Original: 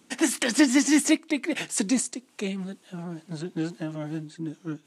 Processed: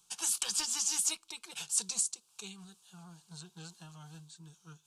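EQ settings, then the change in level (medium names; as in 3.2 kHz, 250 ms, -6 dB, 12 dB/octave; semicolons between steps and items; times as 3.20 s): amplifier tone stack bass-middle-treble 10-0-10; bass shelf 87 Hz +10 dB; static phaser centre 390 Hz, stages 8; 0.0 dB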